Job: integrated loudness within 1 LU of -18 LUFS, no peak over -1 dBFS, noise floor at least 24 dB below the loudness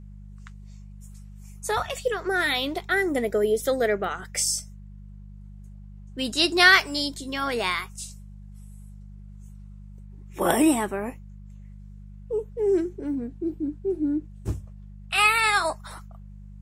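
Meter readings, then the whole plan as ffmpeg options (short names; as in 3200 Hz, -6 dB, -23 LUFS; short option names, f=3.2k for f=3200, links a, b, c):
hum 50 Hz; harmonics up to 200 Hz; hum level -40 dBFS; loudness -24.0 LUFS; peak -3.5 dBFS; loudness target -18.0 LUFS
-> -af "bandreject=f=50:t=h:w=4,bandreject=f=100:t=h:w=4,bandreject=f=150:t=h:w=4,bandreject=f=200:t=h:w=4"
-af "volume=6dB,alimiter=limit=-1dB:level=0:latency=1"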